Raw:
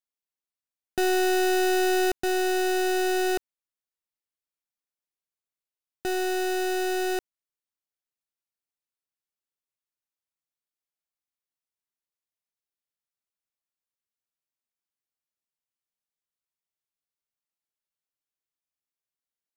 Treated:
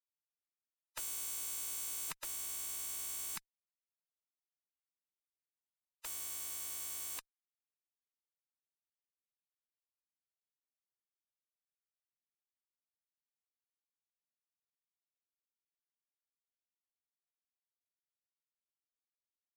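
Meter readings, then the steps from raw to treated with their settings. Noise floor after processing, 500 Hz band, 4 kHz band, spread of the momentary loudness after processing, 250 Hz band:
under -85 dBFS, -40.0 dB, -15.0 dB, 6 LU, -39.0 dB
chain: spectral gate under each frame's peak -30 dB weak; tube stage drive 38 dB, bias 0.3; gain +8 dB

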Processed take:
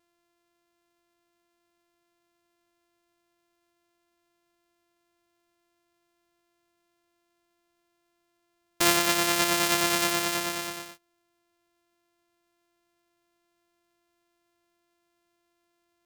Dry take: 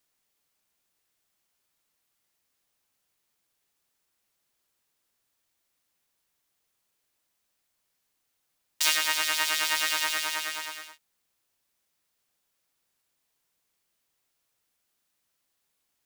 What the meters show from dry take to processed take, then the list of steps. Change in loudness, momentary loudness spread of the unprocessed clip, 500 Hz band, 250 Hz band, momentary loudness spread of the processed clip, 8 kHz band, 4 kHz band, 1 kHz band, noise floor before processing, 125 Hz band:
+1.5 dB, 11 LU, +13.5 dB, +20.5 dB, 11 LU, +2.0 dB, -0.5 dB, +5.5 dB, -78 dBFS, n/a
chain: sample sorter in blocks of 128 samples; gain +2.5 dB

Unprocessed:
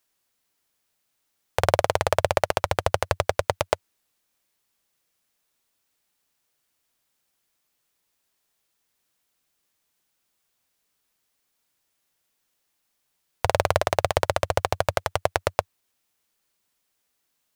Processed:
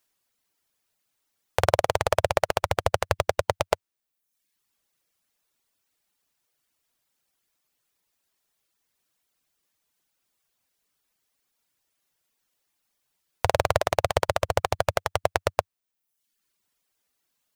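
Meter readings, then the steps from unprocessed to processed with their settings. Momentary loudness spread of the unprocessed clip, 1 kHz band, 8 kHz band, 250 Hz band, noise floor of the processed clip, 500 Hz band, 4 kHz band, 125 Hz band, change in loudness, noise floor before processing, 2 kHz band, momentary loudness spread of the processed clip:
5 LU, -0.5 dB, -0.5 dB, -0.5 dB, -82 dBFS, -0.5 dB, -0.5 dB, -1.0 dB, -0.5 dB, -76 dBFS, -0.5 dB, 5 LU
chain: reverb removal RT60 0.78 s

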